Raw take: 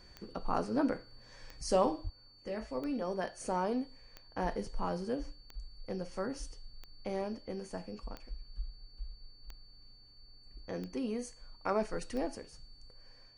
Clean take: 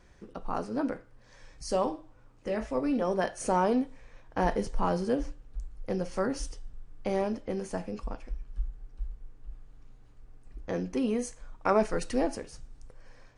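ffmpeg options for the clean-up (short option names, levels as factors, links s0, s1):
-filter_complex "[0:a]adeclick=t=4,bandreject=f=4500:w=30,asplit=3[s0][s1][s2];[s0]afade=t=out:st=2.03:d=0.02[s3];[s1]highpass=f=140:w=0.5412,highpass=f=140:w=1.3066,afade=t=in:st=2.03:d=0.02,afade=t=out:st=2.15:d=0.02[s4];[s2]afade=t=in:st=2.15:d=0.02[s5];[s3][s4][s5]amix=inputs=3:normalize=0,asetnsamples=n=441:p=0,asendcmd='2.09 volume volume 7.5dB',volume=1"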